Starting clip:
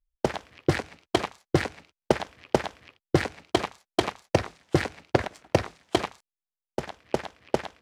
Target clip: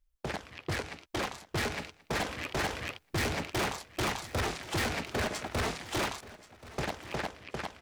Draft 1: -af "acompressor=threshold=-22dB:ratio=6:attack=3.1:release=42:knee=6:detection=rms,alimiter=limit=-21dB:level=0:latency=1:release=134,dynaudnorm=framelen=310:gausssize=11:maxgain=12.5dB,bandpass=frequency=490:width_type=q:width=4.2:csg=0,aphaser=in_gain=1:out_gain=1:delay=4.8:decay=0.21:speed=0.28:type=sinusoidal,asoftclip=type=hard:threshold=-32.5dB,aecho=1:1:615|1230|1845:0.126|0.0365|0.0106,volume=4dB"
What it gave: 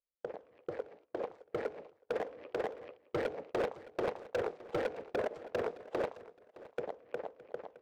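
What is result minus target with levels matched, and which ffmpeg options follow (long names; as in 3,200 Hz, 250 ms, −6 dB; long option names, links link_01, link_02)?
echo 466 ms early; 500 Hz band +7.0 dB
-af "acompressor=threshold=-22dB:ratio=6:attack=3.1:release=42:knee=6:detection=rms,alimiter=limit=-21dB:level=0:latency=1:release=134,dynaudnorm=framelen=310:gausssize=11:maxgain=12.5dB,aphaser=in_gain=1:out_gain=1:delay=4.8:decay=0.21:speed=0.28:type=sinusoidal,asoftclip=type=hard:threshold=-32.5dB,aecho=1:1:1081|2162|3243:0.126|0.0365|0.0106,volume=4dB"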